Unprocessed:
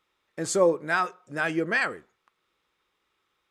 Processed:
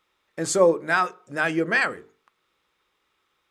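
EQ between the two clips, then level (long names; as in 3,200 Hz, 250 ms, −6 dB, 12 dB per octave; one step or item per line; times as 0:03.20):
mains-hum notches 50/100/150/200/250/300/350/400/450 Hz
+3.5 dB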